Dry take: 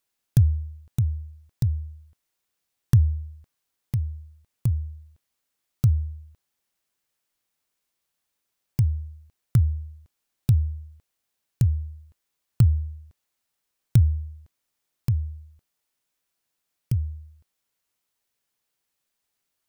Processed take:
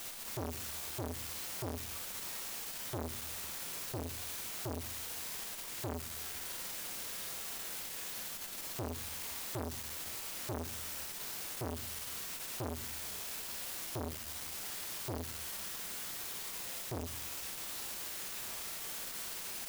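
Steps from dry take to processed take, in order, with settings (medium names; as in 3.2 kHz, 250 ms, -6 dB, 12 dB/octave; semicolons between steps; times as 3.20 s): peak limiter -17.5 dBFS, peak gain reduction 10.5 dB; overdrive pedal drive 29 dB, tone 2.9 kHz, clips at -17.5 dBFS; word length cut 6-bit, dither triangular; Schroeder reverb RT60 0.47 s, combs from 33 ms, DRR 2 dB; transformer saturation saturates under 970 Hz; trim -8 dB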